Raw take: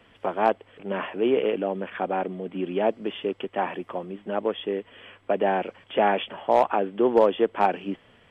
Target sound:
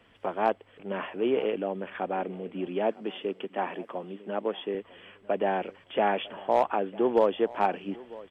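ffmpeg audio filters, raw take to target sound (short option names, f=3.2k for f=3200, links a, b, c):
-filter_complex "[0:a]asettb=1/sr,asplit=3[a][b][c];[a]atrim=end=2.674[d];[b]atrim=start=2.67:end=4.75,asetpts=PTS-STARTPTS,afade=t=in:d=0.004:c=qsin,afade=t=out:st=2.076:d=0.004:c=qsin,highpass=f=150:w=0.5412,highpass=f=150:w=1.3066[e];[c]atrim=start=4.746[f];[d][e]acrossfade=d=0.004:c1=hsin:c2=qsin[g];[g][f]acrossfade=d=0.004:c1=qsin:c2=hsin,aecho=1:1:952|1904:0.0944|0.0255,volume=-4dB"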